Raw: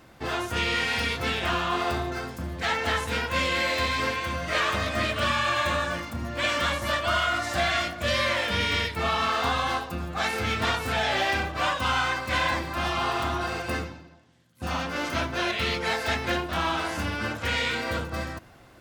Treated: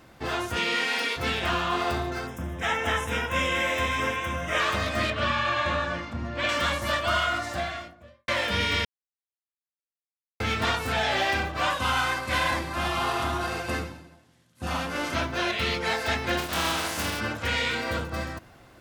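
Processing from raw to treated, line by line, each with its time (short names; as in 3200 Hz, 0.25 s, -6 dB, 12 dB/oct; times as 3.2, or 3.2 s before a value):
0.55–1.16 HPF 140 Hz -> 310 Hz 24 dB/oct
2.27–4.6 Butterworth band-stop 4400 Hz, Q 2.6
5.1–6.49 air absorption 110 m
7.16–8.28 studio fade out
8.85–10.4 mute
11.7–15.15 CVSD 64 kbps
16.37–17.19 spectral contrast lowered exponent 0.55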